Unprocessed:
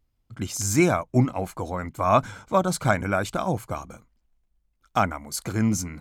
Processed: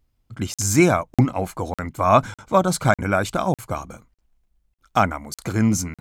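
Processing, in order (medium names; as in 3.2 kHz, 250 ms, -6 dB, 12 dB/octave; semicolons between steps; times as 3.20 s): crackling interface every 0.60 s, samples 2048, zero, from 0.54 s; trim +4 dB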